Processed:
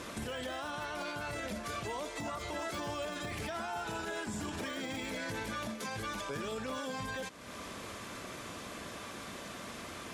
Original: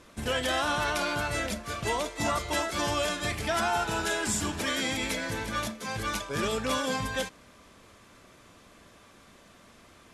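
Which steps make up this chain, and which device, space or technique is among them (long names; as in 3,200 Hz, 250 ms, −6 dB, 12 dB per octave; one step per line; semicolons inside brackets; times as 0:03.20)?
podcast mastering chain (high-pass filter 100 Hz 6 dB per octave; de-essing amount 95%; downward compressor 3 to 1, threshold −48 dBFS, peak gain reduction 16.5 dB; brickwall limiter −41 dBFS, peak gain reduction 8 dB; level +11.5 dB; MP3 96 kbit/s 48,000 Hz)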